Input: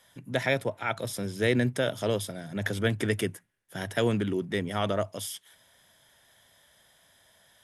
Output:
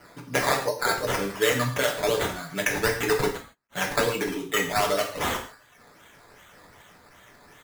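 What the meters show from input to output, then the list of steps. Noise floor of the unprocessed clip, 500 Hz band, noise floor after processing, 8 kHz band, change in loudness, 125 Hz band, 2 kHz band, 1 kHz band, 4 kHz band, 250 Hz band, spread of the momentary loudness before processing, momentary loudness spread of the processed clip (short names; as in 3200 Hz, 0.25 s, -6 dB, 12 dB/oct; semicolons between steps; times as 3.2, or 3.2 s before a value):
-63 dBFS, +3.5 dB, -55 dBFS, +9.0 dB, +4.0 dB, -3.0 dB, +6.5 dB, +9.0 dB, +6.5 dB, -2.0 dB, 9 LU, 6 LU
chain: HPF 170 Hz 6 dB/oct; reverb removal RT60 0.93 s; LPF 3300 Hz 6 dB/oct; tilt +3 dB/oct; comb 6.8 ms, depth 91%; compressor 2.5:1, threshold -29 dBFS, peak gain reduction 7.5 dB; decimation with a swept rate 12×, swing 60% 2.6 Hz; non-linear reverb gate 0.18 s falling, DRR 0.5 dB; attack slew limiter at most 540 dB/s; gain +6 dB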